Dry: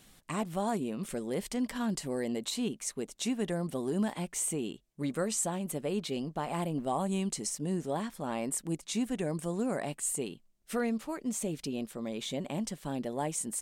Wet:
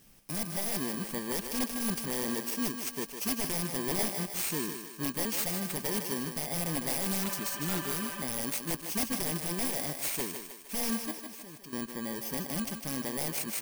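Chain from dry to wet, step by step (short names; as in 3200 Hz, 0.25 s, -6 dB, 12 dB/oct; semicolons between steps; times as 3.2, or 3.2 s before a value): FFT order left unsorted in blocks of 32 samples; 7.25–8.19 spectral repair 460–3600 Hz before; 11.11–11.73 level quantiser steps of 24 dB; wrapped overs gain 25 dB; thinning echo 0.154 s, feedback 52%, high-pass 280 Hz, level -6.5 dB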